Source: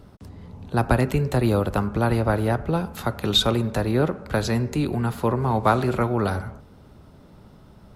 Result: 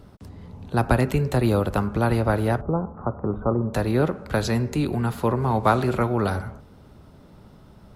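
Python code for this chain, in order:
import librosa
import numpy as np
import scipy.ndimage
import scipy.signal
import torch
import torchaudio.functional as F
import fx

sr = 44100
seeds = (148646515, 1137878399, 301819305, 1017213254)

y = fx.ellip_lowpass(x, sr, hz=1200.0, order=4, stop_db=80, at=(2.61, 3.74))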